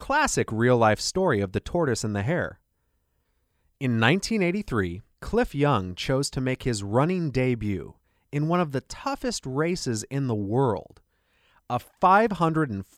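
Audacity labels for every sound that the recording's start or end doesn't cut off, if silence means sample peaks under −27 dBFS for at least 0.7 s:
3.810000	10.780000	sound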